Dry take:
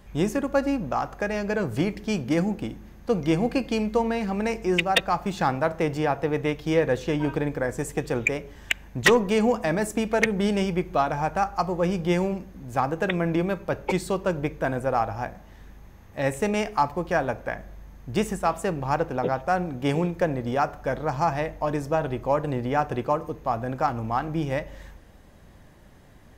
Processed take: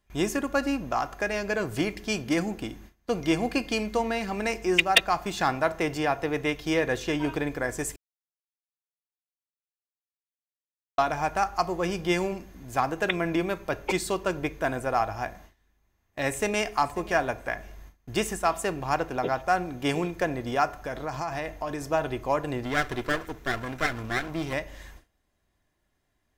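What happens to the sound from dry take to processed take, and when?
7.96–10.98 mute
16.29–16.72 echo throw 0.54 s, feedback 20%, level -17 dB
20.76–21.82 compressor, threshold -25 dBFS
22.63–24.53 minimum comb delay 0.53 ms
whole clip: gate with hold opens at -35 dBFS; tilt shelf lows -4 dB, about 1200 Hz; comb 2.9 ms, depth 32%

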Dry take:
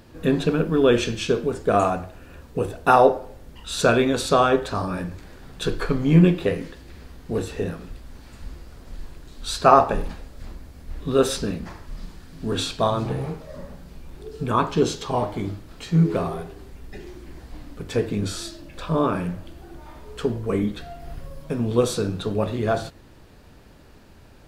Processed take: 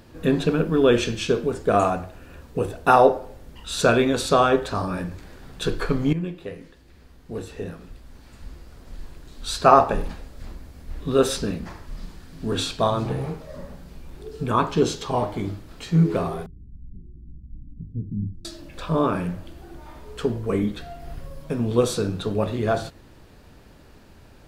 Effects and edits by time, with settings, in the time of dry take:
6.13–9.61 fade in, from -15.5 dB
16.46–18.45 inverse Chebyshev low-pass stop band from 720 Hz, stop band 60 dB

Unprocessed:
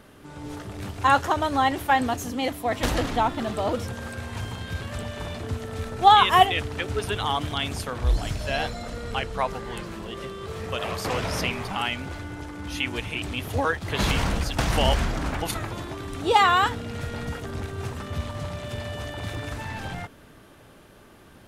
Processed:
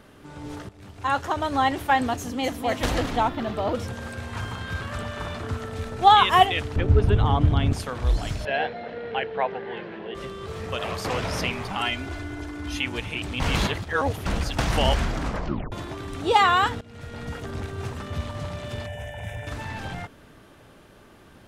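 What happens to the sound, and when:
0.69–1.61 fade in, from -16 dB
2.18–2.65 echo throw 0.25 s, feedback 50%, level -6 dB
3.29–3.75 bell 8500 Hz -10 dB 1.1 oct
4.33–5.69 bell 1300 Hz +7.5 dB 0.8 oct
6.76–7.73 tilt -4 dB/oct
8.45–10.15 speaker cabinet 200–3200 Hz, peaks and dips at 260 Hz -4 dB, 440 Hz +6 dB, 760 Hz +4 dB, 1200 Hz -9 dB, 1700 Hz +5 dB
11.8–12.78 comb 2.9 ms
13.4–14.26 reverse
15.23 tape stop 0.49 s
16.81–17.44 fade in, from -17.5 dB
18.86–19.47 fixed phaser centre 1200 Hz, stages 6
whole clip: bell 13000 Hz -4.5 dB 1 oct

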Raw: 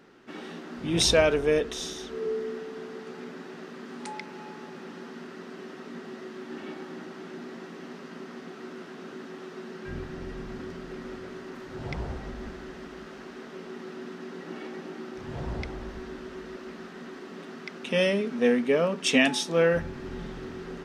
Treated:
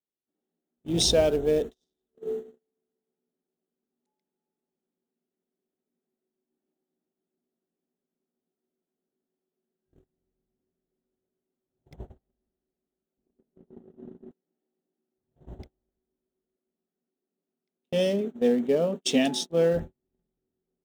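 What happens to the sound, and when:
11.94 noise floor step -49 dB -55 dB
13.17–14.31 tilt -4 dB/oct
whole clip: Wiener smoothing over 9 samples; gate -30 dBFS, range -45 dB; band shelf 1600 Hz -11 dB

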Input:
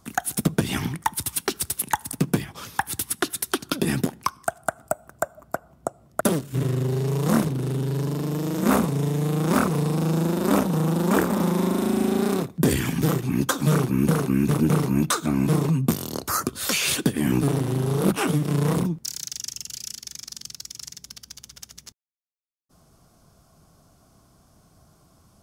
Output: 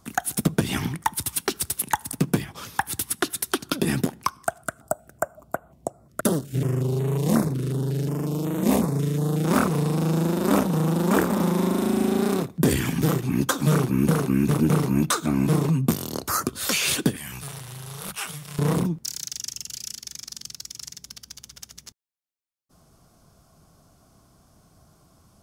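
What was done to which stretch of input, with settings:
4.63–9.45 stepped notch 5.5 Hz 810–5100 Hz
17.16–18.59 passive tone stack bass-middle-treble 10-0-10

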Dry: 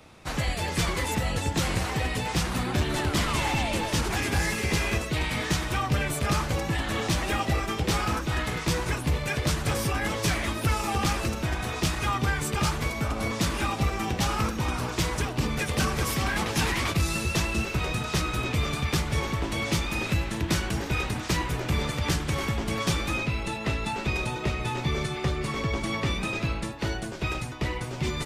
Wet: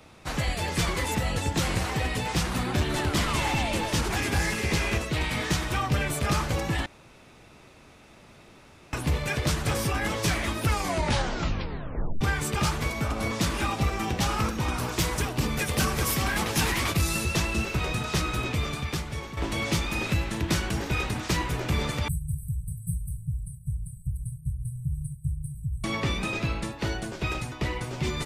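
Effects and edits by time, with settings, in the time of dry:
4.43–5.21 Doppler distortion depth 0.13 ms
6.86–8.93 room tone
10.69 tape stop 1.52 s
14.78–17.25 high shelf 11000 Hz +10.5 dB
18.34–19.37 fade out linear, to -10.5 dB
22.08–25.84 brick-wall FIR band-stop 170–7900 Hz

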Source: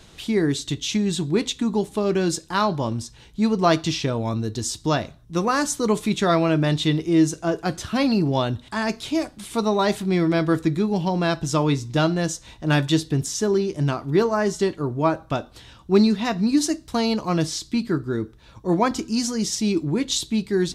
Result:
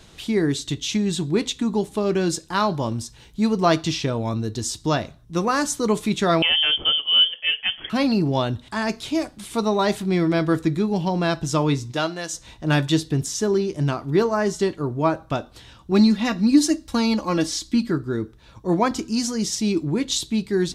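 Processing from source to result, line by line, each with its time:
2.65–3.63 high shelf 11000 Hz +8 dB
6.42–7.9 inverted band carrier 3300 Hz
11.91–12.32 HPF 410 Hz -> 1200 Hz 6 dB/oct
15.91–17.91 comb 3.6 ms

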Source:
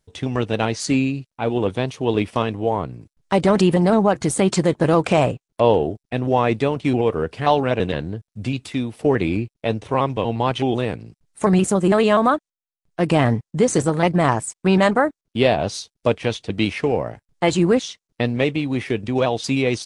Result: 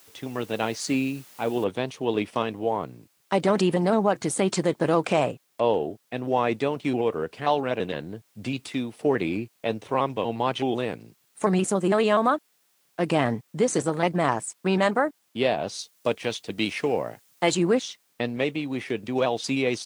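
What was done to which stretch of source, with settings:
1.64 noise floor step -47 dB -63 dB
15.79–17.55 high shelf 3800 Hz +6.5 dB
whole clip: AGC gain up to 6 dB; Bessel high-pass 200 Hz, order 2; gain -7.5 dB

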